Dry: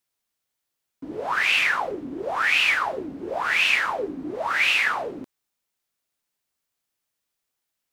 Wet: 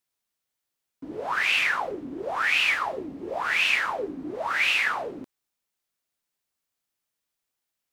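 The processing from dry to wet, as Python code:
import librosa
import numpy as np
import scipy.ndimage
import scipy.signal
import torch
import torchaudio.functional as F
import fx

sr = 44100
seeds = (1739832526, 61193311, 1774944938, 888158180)

y = fx.notch(x, sr, hz=1500.0, q=11.0, at=(2.73, 3.38))
y = F.gain(torch.from_numpy(y), -2.5).numpy()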